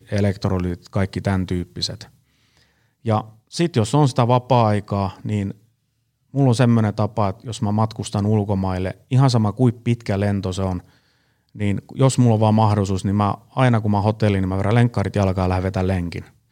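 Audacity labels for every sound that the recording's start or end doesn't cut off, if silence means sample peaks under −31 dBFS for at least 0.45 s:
3.060000	5.510000	sound
6.340000	10.800000	sound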